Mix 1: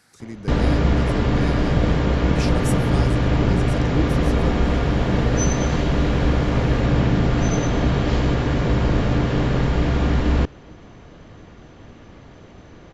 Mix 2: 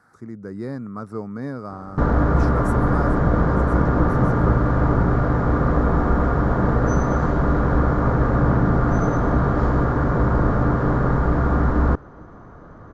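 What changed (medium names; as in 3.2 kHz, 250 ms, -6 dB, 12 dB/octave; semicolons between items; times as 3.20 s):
background: entry +1.50 s; master: add resonant high shelf 1.9 kHz -12.5 dB, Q 3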